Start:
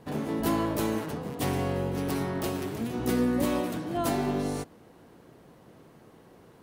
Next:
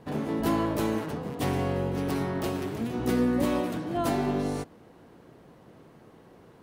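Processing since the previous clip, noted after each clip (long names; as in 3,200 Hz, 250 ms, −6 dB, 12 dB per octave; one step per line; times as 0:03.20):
high-shelf EQ 5,800 Hz −6.5 dB
level +1 dB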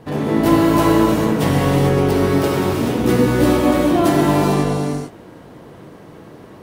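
reverb whose tail is shaped and stops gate 480 ms flat, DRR −3.5 dB
level +8 dB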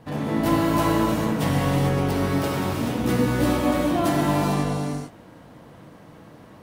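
parametric band 390 Hz −8.5 dB 0.42 octaves
level −5 dB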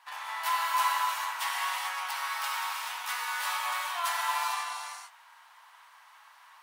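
elliptic high-pass filter 920 Hz, stop band 60 dB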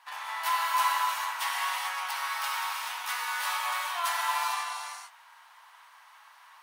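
notch filter 7,500 Hz, Q 29
level +1 dB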